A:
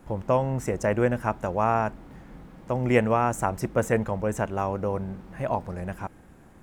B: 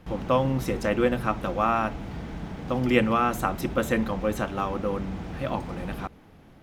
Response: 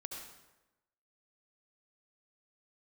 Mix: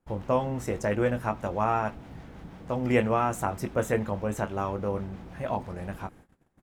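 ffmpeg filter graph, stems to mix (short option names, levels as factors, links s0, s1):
-filter_complex "[0:a]volume=0.668[s0];[1:a]acrossover=split=600[s1][s2];[s1]aeval=exprs='val(0)*(1-0.5/2+0.5/2*cos(2*PI*6.1*n/s))':c=same[s3];[s2]aeval=exprs='val(0)*(1-0.5/2-0.5/2*cos(2*PI*6.1*n/s))':c=same[s4];[s3][s4]amix=inputs=2:normalize=0,adelay=16,volume=0.398[s5];[s0][s5]amix=inputs=2:normalize=0,agate=range=0.0891:threshold=0.00282:ratio=16:detection=peak"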